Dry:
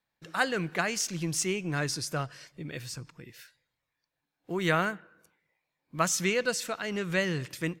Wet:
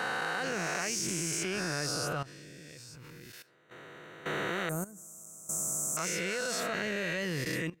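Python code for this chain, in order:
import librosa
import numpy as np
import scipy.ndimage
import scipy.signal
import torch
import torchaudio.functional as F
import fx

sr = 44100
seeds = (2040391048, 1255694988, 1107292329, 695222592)

y = fx.spec_swells(x, sr, rise_s=2.05)
y = fx.curve_eq(y, sr, hz=(250.0, 600.0, 3400.0, 7600.0), db=(0, -7, -30, 15), at=(4.69, 5.97))
y = fx.level_steps(y, sr, step_db=16)
y = y * 10.0 ** (-1.5 / 20.0)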